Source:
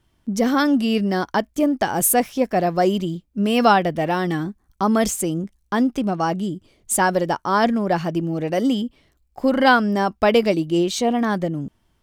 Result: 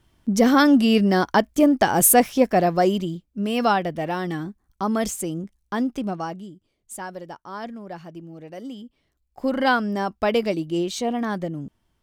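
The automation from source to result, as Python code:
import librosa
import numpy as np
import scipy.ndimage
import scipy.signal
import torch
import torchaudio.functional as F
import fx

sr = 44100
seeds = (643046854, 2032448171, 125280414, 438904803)

y = fx.gain(x, sr, db=fx.line((2.4, 2.5), (3.39, -5.0), (6.12, -5.0), (6.55, -16.0), (8.76, -16.0), (9.46, -5.0)))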